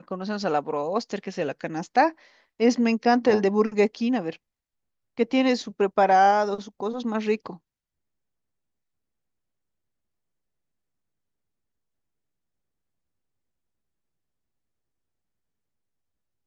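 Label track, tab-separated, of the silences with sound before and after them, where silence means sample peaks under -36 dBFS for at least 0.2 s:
2.100000	2.600000	silence
4.360000	5.180000	silence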